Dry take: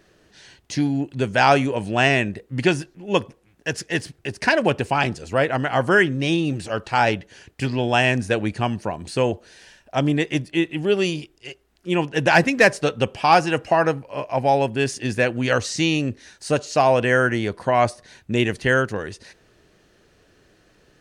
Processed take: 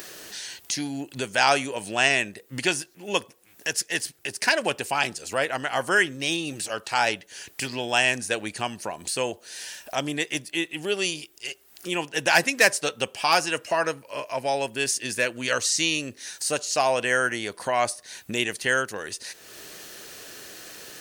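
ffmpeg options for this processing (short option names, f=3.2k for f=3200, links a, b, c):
-filter_complex "[0:a]asettb=1/sr,asplit=3[a][b][c];[a]atrim=end=13.274[d];[b]atrim=start=13.27:end=16.1,asetpts=PTS-STARTPTS,afade=t=in:d=0.004:c=qsin,afade=t=out:st=2.826:d=0.004:c=qsin,asuperstop=centerf=770:order=4:qfactor=6.6[e];[c]atrim=start=16.096[f];[d][e]acrossfade=d=0.004:c1=hsin:c2=qsin[g];[g][f]acrossfade=d=0.004:c1=qsin:c2=hsin,aemphasis=mode=production:type=riaa,acompressor=mode=upward:threshold=-22dB:ratio=2.5,volume=-4.5dB"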